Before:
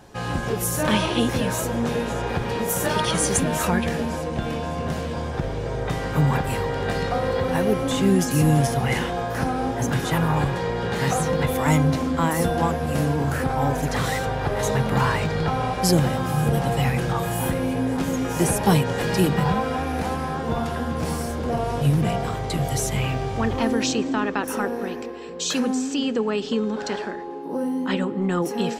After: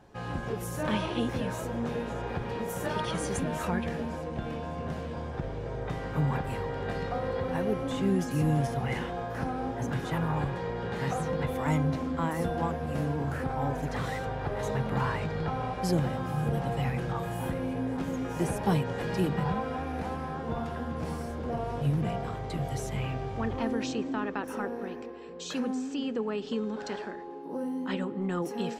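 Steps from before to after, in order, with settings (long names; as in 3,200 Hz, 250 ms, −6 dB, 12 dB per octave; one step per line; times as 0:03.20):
high-shelf EQ 4,000 Hz −10.5 dB, from 0:26.47 −4 dB
level −8 dB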